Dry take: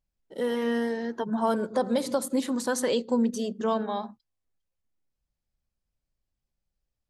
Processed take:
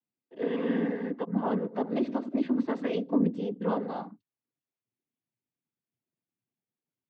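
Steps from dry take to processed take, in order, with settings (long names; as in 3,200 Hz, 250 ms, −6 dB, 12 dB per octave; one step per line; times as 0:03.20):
loudspeaker in its box 140–2,700 Hz, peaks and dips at 300 Hz +8 dB, 570 Hz −7 dB, 960 Hz −4 dB, 1,500 Hz −9 dB
cochlear-implant simulation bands 16
level −1.5 dB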